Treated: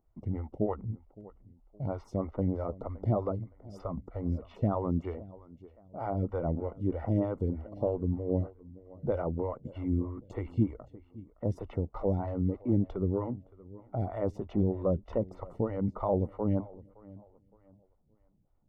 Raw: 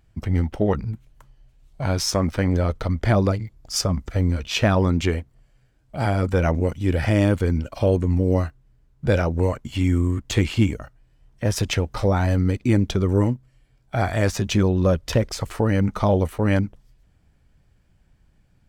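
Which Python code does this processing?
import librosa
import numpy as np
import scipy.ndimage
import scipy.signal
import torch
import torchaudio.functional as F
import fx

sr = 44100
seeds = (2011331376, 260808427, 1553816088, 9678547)

y = scipy.signal.savgol_filter(x, 65, 4, mode='constant')
y = fx.echo_feedback(y, sr, ms=566, feedback_pct=32, wet_db=-20)
y = fx.stagger_phaser(y, sr, hz=3.2)
y = F.gain(torch.from_numpy(y), -7.0).numpy()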